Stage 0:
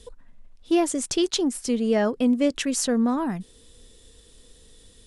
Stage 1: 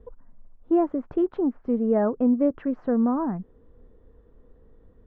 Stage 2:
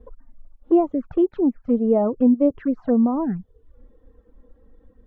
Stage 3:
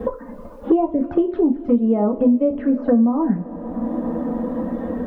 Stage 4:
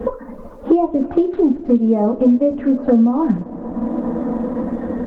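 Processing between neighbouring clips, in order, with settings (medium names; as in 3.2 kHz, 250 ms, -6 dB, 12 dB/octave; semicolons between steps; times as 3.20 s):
low-pass 1.3 kHz 24 dB/octave
touch-sensitive flanger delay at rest 4.2 ms, full sweep at -20.5 dBFS; reverb removal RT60 0.66 s; trim +5.5 dB
reverberation, pre-delay 3 ms, DRR 2.5 dB; three bands compressed up and down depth 100%
trim +2.5 dB; Opus 16 kbps 48 kHz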